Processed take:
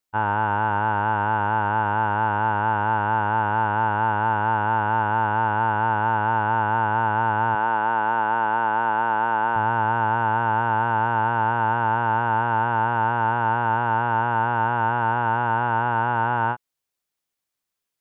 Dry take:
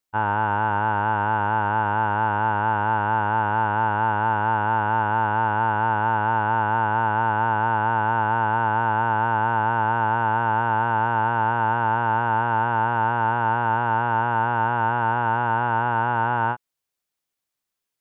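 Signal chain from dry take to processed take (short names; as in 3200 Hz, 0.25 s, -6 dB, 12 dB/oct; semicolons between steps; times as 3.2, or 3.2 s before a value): 7.55–9.56 HPF 230 Hz 12 dB/oct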